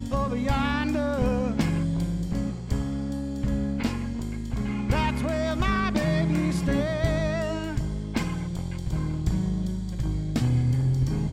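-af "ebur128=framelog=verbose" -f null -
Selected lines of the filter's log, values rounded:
Integrated loudness:
  I:         -27.0 LUFS
  Threshold: -37.0 LUFS
Loudness range:
  LRA:         3.3 LU
  Threshold: -47.3 LUFS
  LRA low:   -29.0 LUFS
  LRA high:  -25.7 LUFS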